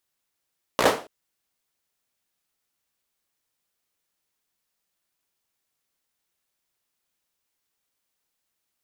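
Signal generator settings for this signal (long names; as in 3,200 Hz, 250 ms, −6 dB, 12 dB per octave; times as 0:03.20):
synth clap length 0.28 s, bursts 5, apart 16 ms, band 510 Hz, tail 0.34 s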